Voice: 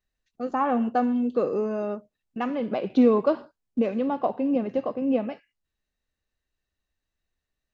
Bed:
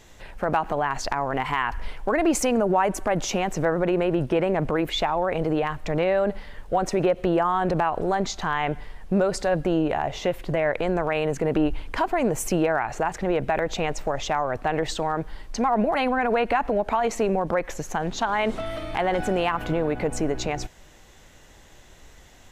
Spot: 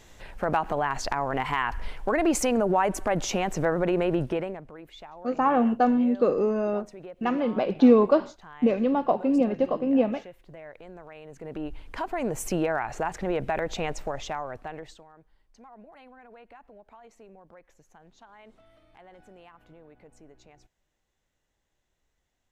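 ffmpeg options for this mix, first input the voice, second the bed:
-filter_complex "[0:a]adelay=4850,volume=1.26[s0];[1:a]volume=5.62,afade=t=out:st=4.17:d=0.45:silence=0.112202,afade=t=in:st=11.27:d=1.29:silence=0.141254,afade=t=out:st=13.88:d=1.17:silence=0.0630957[s1];[s0][s1]amix=inputs=2:normalize=0"

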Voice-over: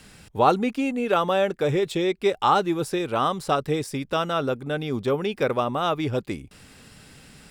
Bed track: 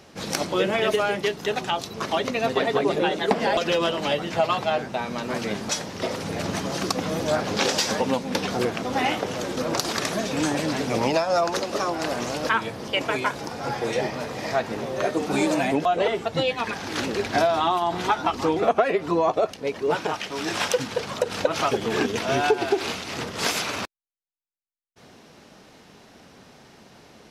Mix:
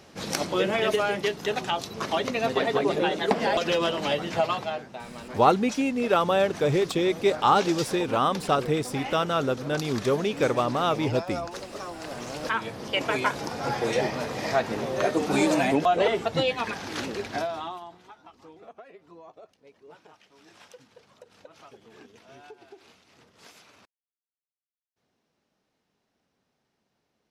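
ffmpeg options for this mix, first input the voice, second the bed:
-filter_complex "[0:a]adelay=5000,volume=0.944[s0];[1:a]volume=2.99,afade=t=out:st=4.38:d=0.47:silence=0.334965,afade=t=in:st=12.01:d=1.31:silence=0.266073,afade=t=out:st=16.22:d=1.77:silence=0.0446684[s1];[s0][s1]amix=inputs=2:normalize=0"

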